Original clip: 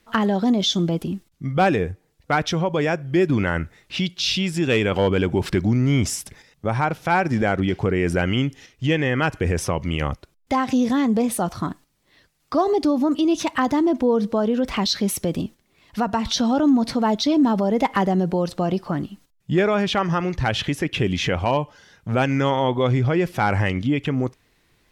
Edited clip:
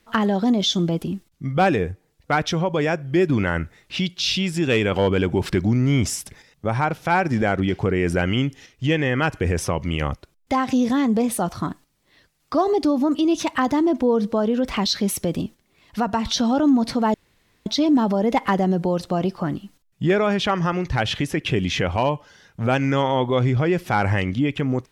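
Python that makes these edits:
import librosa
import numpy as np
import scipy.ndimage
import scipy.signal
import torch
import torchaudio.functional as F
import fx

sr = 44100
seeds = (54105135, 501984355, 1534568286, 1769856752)

y = fx.edit(x, sr, fx.insert_room_tone(at_s=17.14, length_s=0.52), tone=tone)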